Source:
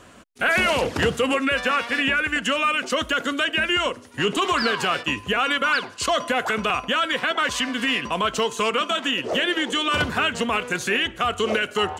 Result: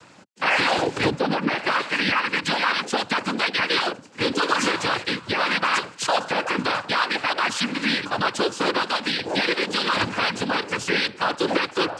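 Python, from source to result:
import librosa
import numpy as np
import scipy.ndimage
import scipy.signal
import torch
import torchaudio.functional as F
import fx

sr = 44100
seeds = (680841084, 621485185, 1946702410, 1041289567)

y = fx.lowpass(x, sr, hz=1800.0, slope=6, at=(1.09, 1.65), fade=0.02)
y = fx.noise_vocoder(y, sr, seeds[0], bands=8)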